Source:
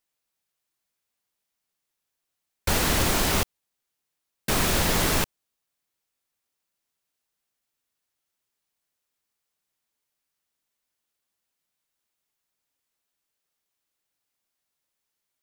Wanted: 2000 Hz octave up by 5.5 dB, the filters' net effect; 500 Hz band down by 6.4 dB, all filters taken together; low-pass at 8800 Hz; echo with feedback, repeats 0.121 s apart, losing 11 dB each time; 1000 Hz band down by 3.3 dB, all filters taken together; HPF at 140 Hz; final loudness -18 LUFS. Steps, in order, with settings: HPF 140 Hz; LPF 8800 Hz; bell 500 Hz -7.5 dB; bell 1000 Hz -5 dB; bell 2000 Hz +8.5 dB; feedback echo 0.121 s, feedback 28%, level -11 dB; gain +5.5 dB

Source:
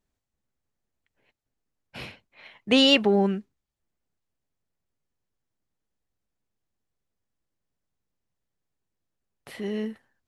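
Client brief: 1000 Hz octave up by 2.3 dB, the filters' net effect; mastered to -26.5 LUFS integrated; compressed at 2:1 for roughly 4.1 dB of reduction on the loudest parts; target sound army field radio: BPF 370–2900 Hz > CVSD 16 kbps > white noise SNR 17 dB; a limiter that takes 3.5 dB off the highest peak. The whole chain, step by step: bell 1000 Hz +3.5 dB; compressor 2:1, threshold -21 dBFS; limiter -15 dBFS; BPF 370–2900 Hz; CVSD 16 kbps; white noise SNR 17 dB; gain +8 dB

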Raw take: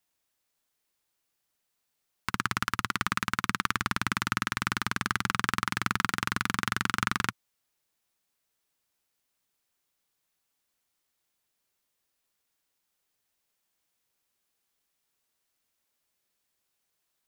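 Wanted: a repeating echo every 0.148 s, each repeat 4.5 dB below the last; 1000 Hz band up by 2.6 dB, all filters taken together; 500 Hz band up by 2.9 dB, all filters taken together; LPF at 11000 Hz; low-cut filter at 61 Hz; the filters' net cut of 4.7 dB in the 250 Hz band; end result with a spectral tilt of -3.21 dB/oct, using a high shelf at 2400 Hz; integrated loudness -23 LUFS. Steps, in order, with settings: HPF 61 Hz; LPF 11000 Hz; bell 250 Hz -8 dB; bell 500 Hz +6.5 dB; bell 1000 Hz +4 dB; high shelf 2400 Hz -5 dB; feedback echo 0.148 s, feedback 60%, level -4.5 dB; gain +5 dB

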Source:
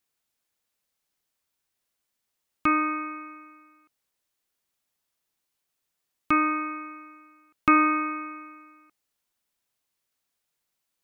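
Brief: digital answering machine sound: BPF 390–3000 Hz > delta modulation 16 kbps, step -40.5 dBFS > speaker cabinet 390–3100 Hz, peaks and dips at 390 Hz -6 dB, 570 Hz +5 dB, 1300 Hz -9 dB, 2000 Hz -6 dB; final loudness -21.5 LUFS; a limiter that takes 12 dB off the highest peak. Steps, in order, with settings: limiter -19 dBFS; BPF 390–3000 Hz; delta modulation 16 kbps, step -40.5 dBFS; speaker cabinet 390–3100 Hz, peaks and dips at 390 Hz -6 dB, 570 Hz +5 dB, 1300 Hz -9 dB, 2000 Hz -6 dB; gain +24.5 dB

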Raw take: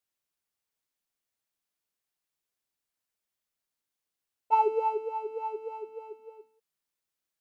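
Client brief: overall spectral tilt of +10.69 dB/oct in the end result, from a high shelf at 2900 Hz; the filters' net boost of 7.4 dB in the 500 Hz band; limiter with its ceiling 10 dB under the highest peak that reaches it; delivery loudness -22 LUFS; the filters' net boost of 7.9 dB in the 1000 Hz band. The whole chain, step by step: bell 500 Hz +7.5 dB; bell 1000 Hz +7 dB; high shelf 2900 Hz -3 dB; gain +4.5 dB; limiter -11.5 dBFS

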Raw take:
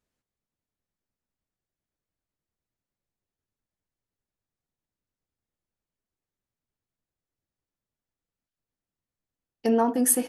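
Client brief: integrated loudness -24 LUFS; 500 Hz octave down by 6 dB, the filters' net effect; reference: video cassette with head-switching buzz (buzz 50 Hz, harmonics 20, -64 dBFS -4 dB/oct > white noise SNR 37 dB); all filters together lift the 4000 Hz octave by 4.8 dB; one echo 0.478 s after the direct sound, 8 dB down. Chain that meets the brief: bell 500 Hz -7 dB; bell 4000 Hz +7 dB; echo 0.478 s -8 dB; buzz 50 Hz, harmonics 20, -64 dBFS -4 dB/oct; white noise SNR 37 dB; gain +1 dB

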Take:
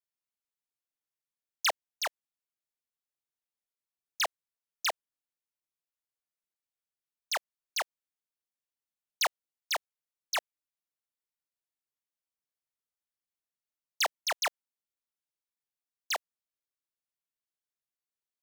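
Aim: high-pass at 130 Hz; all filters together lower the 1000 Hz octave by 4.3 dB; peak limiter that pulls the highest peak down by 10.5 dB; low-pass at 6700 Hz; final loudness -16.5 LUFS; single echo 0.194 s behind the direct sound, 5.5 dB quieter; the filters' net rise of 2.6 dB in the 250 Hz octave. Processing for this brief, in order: HPF 130 Hz; LPF 6700 Hz; bell 250 Hz +4.5 dB; bell 1000 Hz -6 dB; limiter -33 dBFS; echo 0.194 s -5.5 dB; gain +26 dB

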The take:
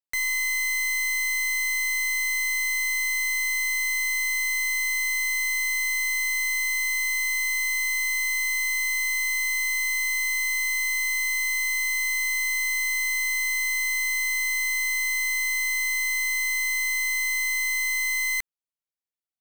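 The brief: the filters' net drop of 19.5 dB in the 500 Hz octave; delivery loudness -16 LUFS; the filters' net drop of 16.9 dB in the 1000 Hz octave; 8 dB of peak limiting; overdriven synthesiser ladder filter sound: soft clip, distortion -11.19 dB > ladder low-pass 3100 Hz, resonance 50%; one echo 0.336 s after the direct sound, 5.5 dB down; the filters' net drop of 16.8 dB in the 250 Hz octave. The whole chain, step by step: bell 250 Hz -9 dB; bell 500 Hz -9 dB; bell 1000 Hz -6.5 dB; limiter -29 dBFS; echo 0.336 s -5.5 dB; soft clip -36.5 dBFS; ladder low-pass 3100 Hz, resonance 50%; gain +26.5 dB

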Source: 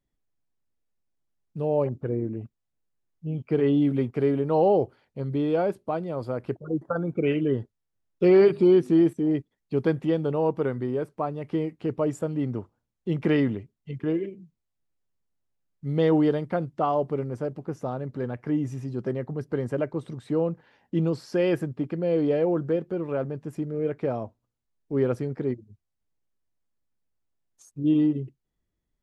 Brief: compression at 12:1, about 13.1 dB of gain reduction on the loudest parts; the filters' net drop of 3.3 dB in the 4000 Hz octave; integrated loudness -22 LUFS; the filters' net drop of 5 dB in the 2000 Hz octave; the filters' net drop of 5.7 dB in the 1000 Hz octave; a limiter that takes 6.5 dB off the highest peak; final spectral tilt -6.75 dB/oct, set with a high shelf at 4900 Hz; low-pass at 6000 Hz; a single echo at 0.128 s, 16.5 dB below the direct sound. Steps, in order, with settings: LPF 6000 Hz; bell 1000 Hz -8 dB; bell 2000 Hz -3.5 dB; bell 4000 Hz -3.5 dB; high shelf 4900 Hz +4 dB; compressor 12:1, threshold -28 dBFS; limiter -25 dBFS; echo 0.128 s -16.5 dB; gain +13 dB

